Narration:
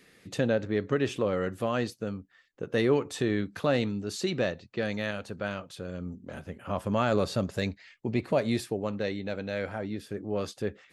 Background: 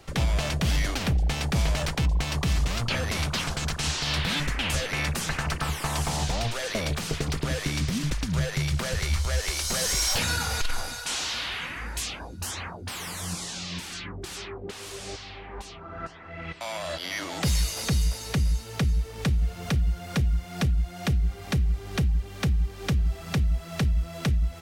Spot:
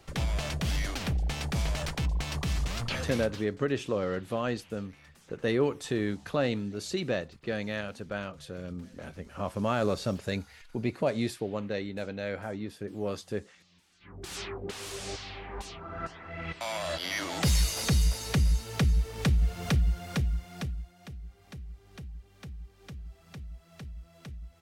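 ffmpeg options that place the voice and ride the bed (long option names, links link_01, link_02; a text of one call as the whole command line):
ffmpeg -i stem1.wav -i stem2.wav -filter_complex "[0:a]adelay=2700,volume=-2dB[link_01];[1:a]volume=23.5dB,afade=type=out:start_time=2.98:duration=0.49:silence=0.0630957,afade=type=in:start_time=14:duration=0.4:silence=0.0354813,afade=type=out:start_time=19.73:duration=1.22:silence=0.11885[link_02];[link_01][link_02]amix=inputs=2:normalize=0" out.wav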